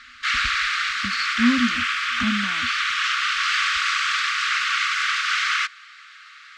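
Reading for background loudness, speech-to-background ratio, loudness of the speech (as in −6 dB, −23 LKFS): −21.5 LKFS, −5.0 dB, −26.5 LKFS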